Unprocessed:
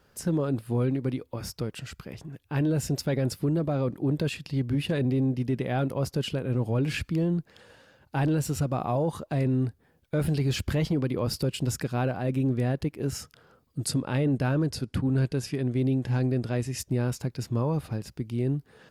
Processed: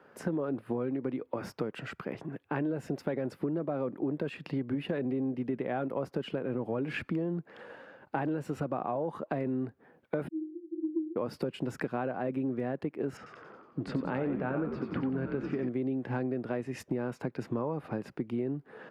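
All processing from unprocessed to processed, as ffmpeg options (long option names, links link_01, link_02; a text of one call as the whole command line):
ffmpeg -i in.wav -filter_complex "[0:a]asettb=1/sr,asplit=3[link_01][link_02][link_03];[link_01]atrim=end=10.284[link_04];[link_02]atrim=start=10.28:end=11.16,asetpts=PTS-STARTPTS,afade=type=in:duration=0.004:curve=qsin,afade=type=out:start_time=0.876:duration=0.004:curve=qsin,asuperpass=centerf=330:order=20:qfactor=6.8,aecho=1:1:6.3:0.32,atrim=end_sample=38808[link_05];[link_03]atrim=start=11.156[link_06];[link_04][link_05]acrossfade=duration=0.004:curve1=hsin:curve2=qsin[link_07];[link_07][link_06]acrossfade=duration=0.004:curve1=qsin:curve2=hsin,asettb=1/sr,asplit=3[link_08][link_09][link_10];[link_08]atrim=end=13.174[link_11];[link_09]atrim=start=13.17:end=15.69,asetpts=PTS-STARTPTS,afade=type=in:duration=0.004:curve=qsin,afade=type=out:start_time=2.516:duration=0.004:curve=qsin,lowpass=3300,bandreject=frequency=92.96:width_type=h:width=4,bandreject=frequency=185.92:width_type=h:width=4,bandreject=frequency=278.88:width_type=h:width=4,bandreject=frequency=371.84:width_type=h:width=4,bandreject=frequency=464.8:width_type=h:width=4,bandreject=frequency=557.76:width_type=h:width=4,bandreject=frequency=650.72:width_type=h:width=4,bandreject=frequency=743.68:width_type=h:width=4,bandreject=frequency=836.64:width_type=h:width=4,bandreject=frequency=929.6:width_type=h:width=4,bandreject=frequency=1022.56:width_type=h:width=4,bandreject=frequency=1115.52:width_type=h:width=4,bandreject=frequency=1208.48:width_type=h:width=4,bandreject=frequency=1301.44:width_type=h:width=4,bandreject=frequency=1394.4:width_type=h:width=4,bandreject=frequency=1487.36:width_type=h:width=4,bandreject=frequency=1580.32:width_type=h:width=4,bandreject=frequency=1673.28:width_type=h:width=4,bandreject=frequency=1766.24:width_type=h:width=4,bandreject=frequency=1859.2:width_type=h:width=4,bandreject=frequency=1952.16:width_type=h:width=4,bandreject=frequency=2045.12:width_type=h:width=4,bandreject=frequency=2138.08:width_type=h:width=4,bandreject=frequency=2231.04:width_type=h:width=4,bandreject=frequency=2324:width_type=h:width=4,bandreject=frequency=2416.96:width_type=h:width=4,bandreject=frequency=2509.92:width_type=h:width=4,bandreject=frequency=2602.88:width_type=h:width=4,bandreject=frequency=2695.84:width_type=h:width=4,bandreject=frequency=2788.8:width_type=h:width=4,bandreject=frequency=2881.76:width_type=h:width=4,bandreject=frequency=2974.72:width_type=h:width=4,bandreject=frequency=3067.68:width_type=h:width=4,bandreject=frequency=3160.64:width_type=h:width=4,asplit=8[link_12][link_13][link_14][link_15][link_16][link_17][link_18][link_19];[link_13]adelay=91,afreqshift=-89,volume=-5dB[link_20];[link_14]adelay=182,afreqshift=-178,volume=-10.2dB[link_21];[link_15]adelay=273,afreqshift=-267,volume=-15.4dB[link_22];[link_16]adelay=364,afreqshift=-356,volume=-20.6dB[link_23];[link_17]adelay=455,afreqshift=-445,volume=-25.8dB[link_24];[link_18]adelay=546,afreqshift=-534,volume=-31dB[link_25];[link_19]adelay=637,afreqshift=-623,volume=-36.2dB[link_26];[link_12][link_20][link_21][link_22][link_23][link_24][link_25][link_26]amix=inputs=8:normalize=0,atrim=end_sample=111132[link_27];[link_10]atrim=start=15.686[link_28];[link_11][link_27]acrossfade=duration=0.004:curve1=hsin:curve2=qsin[link_29];[link_29][link_28]acrossfade=duration=0.004:curve1=qsin:curve2=hsin,highpass=100,acrossover=split=200 2300:gain=0.158 1 0.0794[link_30][link_31][link_32];[link_30][link_31][link_32]amix=inputs=3:normalize=0,acompressor=threshold=-37dB:ratio=6,volume=7.5dB" out.wav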